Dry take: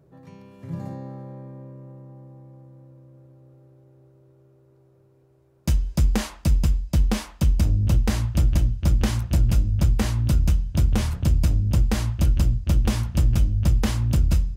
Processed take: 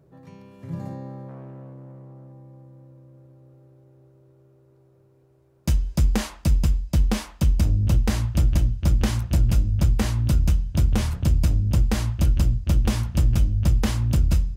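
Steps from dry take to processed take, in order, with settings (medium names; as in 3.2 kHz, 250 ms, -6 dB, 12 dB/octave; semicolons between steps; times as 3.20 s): 1.28–2.32 s: self-modulated delay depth 0.34 ms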